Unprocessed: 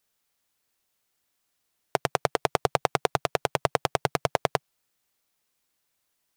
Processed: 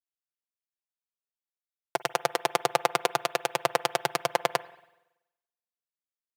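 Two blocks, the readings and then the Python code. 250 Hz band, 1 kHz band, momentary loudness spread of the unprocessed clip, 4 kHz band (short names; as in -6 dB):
-3.5 dB, 0.0 dB, 4 LU, +2.0 dB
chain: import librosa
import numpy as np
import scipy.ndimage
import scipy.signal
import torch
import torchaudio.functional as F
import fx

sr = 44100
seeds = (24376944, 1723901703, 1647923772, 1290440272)

y = fx.highpass(x, sr, hz=630.0, slope=6)
y = y + 0.62 * np.pad(y, (int(5.8 * sr / 1000.0), 0))[:len(y)]
y = fx.rev_spring(y, sr, rt60_s=1.8, pass_ms=(47, 55), chirp_ms=60, drr_db=17.0)
y = fx.band_widen(y, sr, depth_pct=70)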